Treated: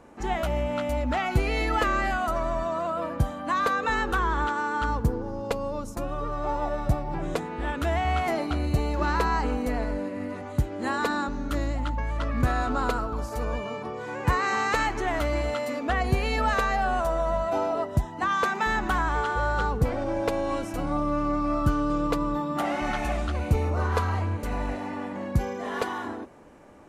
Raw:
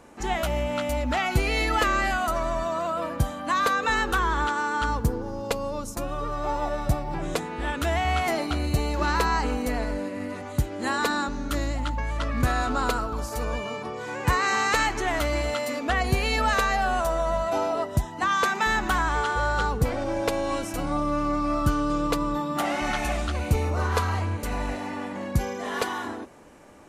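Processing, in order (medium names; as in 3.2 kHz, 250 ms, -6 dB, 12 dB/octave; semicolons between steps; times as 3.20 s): treble shelf 2.5 kHz -8.5 dB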